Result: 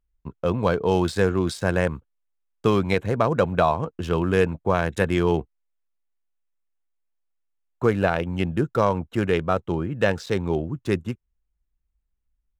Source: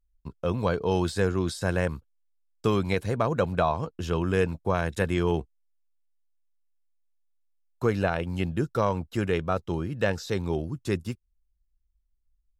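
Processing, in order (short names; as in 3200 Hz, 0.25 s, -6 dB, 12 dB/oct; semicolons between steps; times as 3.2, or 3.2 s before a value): Wiener smoothing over 9 samples; low shelf 60 Hz -10 dB; gain +5 dB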